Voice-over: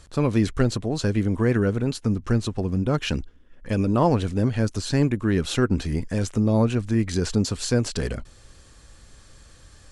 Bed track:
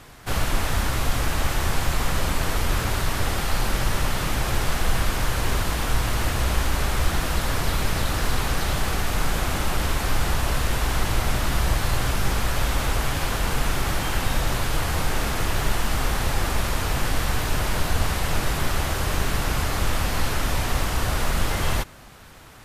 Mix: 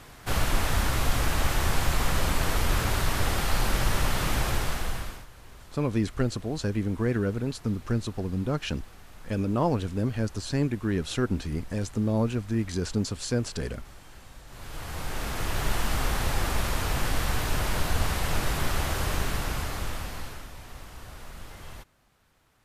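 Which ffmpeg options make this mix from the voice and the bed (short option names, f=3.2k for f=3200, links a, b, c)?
-filter_complex "[0:a]adelay=5600,volume=-5.5dB[a];[1:a]volume=20dB,afade=t=out:st=4.39:d=0.87:silence=0.0668344,afade=t=in:st=14.47:d=1.32:silence=0.0794328,afade=t=out:st=19.03:d=1.47:silence=0.149624[b];[a][b]amix=inputs=2:normalize=0"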